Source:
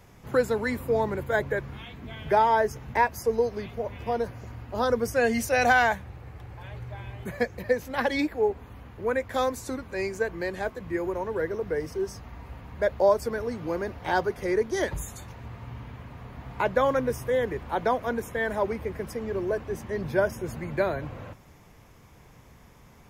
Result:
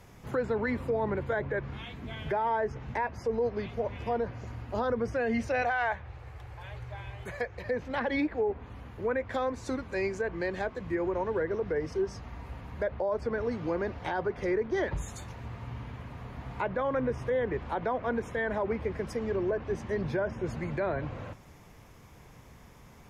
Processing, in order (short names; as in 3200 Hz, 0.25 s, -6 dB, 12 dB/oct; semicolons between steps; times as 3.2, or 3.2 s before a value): treble ducked by the level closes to 2600 Hz, closed at -23.5 dBFS; 5.62–7.66 bell 220 Hz -13.5 dB 1.1 oct; limiter -21.5 dBFS, peak gain reduction 11.5 dB